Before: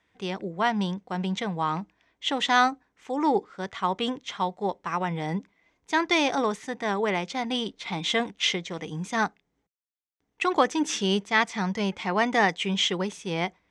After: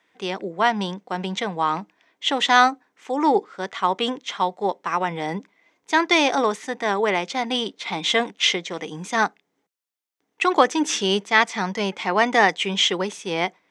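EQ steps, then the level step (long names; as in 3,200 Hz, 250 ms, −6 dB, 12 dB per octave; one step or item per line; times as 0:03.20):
high-pass filter 260 Hz 12 dB per octave
+5.5 dB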